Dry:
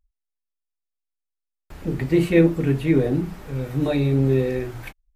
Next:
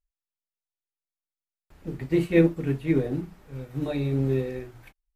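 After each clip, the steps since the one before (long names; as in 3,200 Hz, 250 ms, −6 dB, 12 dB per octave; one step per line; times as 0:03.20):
expander for the loud parts 1.5 to 1, over −34 dBFS
level −2.5 dB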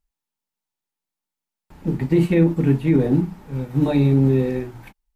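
brickwall limiter −18.5 dBFS, peak gain reduction 10.5 dB
hollow resonant body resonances 200/870 Hz, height 9 dB, ringing for 20 ms
level +6 dB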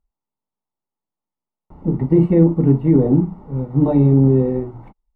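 Savitzky-Golay smoothing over 65 samples
level +3.5 dB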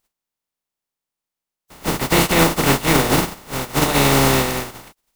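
compressing power law on the bin magnitudes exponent 0.26
level −2 dB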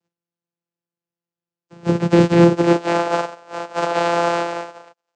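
high-pass filter sweep 270 Hz → 730 Hz, 0:02.41–0:03.02
channel vocoder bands 8, saw 171 Hz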